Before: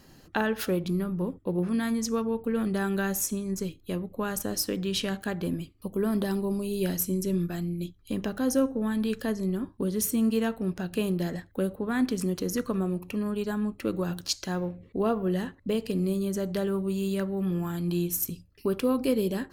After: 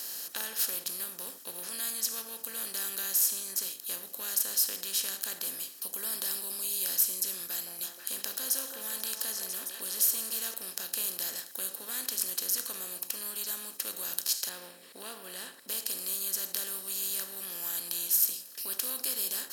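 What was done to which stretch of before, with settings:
7.46–10.54 s: repeats whose band climbs or falls 165 ms, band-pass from 630 Hz, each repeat 0.7 oct, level -4.5 dB
14.49–15.68 s: boxcar filter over 7 samples
whole clip: spectral levelling over time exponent 0.4; differentiator; trim -2.5 dB

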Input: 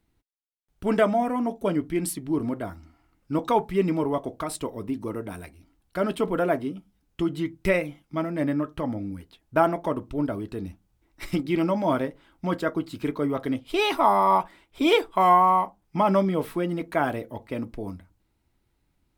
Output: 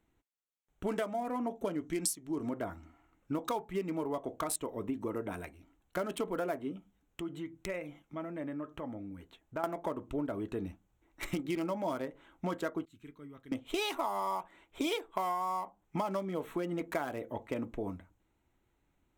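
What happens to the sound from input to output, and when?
1.78–2.51 s: peaking EQ 6 kHz +12 dB 0.92 oct
6.76–9.64 s: compression 2:1, threshold -43 dBFS
12.85–13.52 s: amplifier tone stack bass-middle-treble 6-0-2
whole clip: local Wiener filter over 9 samples; tone controls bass -6 dB, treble +12 dB; compression 10:1, threshold -31 dBFS

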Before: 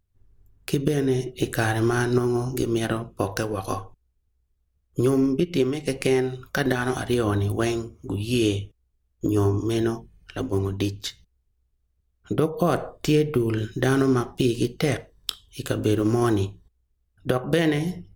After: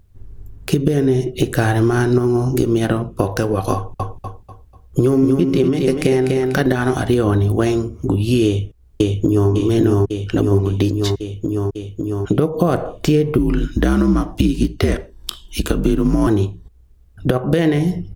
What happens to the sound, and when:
3.75–6.63 s: feedback delay 245 ms, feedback 33%, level -5.5 dB
8.45–9.50 s: echo throw 550 ms, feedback 60%, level -0.5 dB
13.38–16.27 s: frequency shift -69 Hz
whole clip: tilt shelf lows +3.5 dB; compression 2.5:1, threshold -37 dBFS; loudness maximiser +18.5 dB; trim -1 dB

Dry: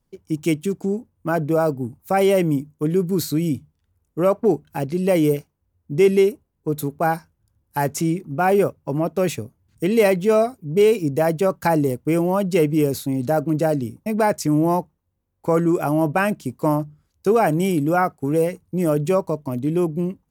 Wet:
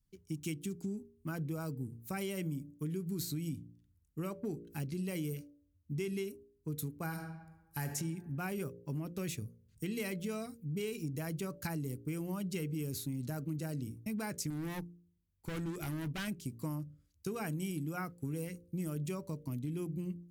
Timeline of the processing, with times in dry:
7.04–7.94 s: reverb throw, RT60 1.1 s, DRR 5.5 dB
14.50–16.28 s: overload inside the chain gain 19.5 dB
whole clip: amplifier tone stack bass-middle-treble 6-0-2; de-hum 57.86 Hz, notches 10; compression, threshold -42 dBFS; trim +7.5 dB

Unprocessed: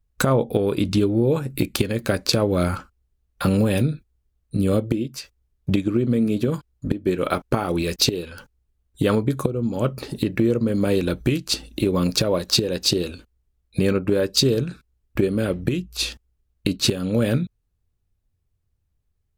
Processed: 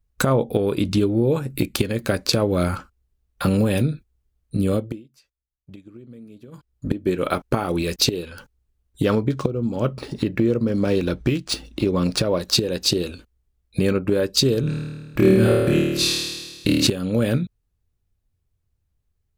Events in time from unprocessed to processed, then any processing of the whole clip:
4.58–6.95 s: dip -22 dB, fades 0.44 s equal-power
9.04–12.41 s: decimation joined by straight lines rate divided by 3×
14.61–16.87 s: flutter echo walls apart 4.5 m, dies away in 1.4 s

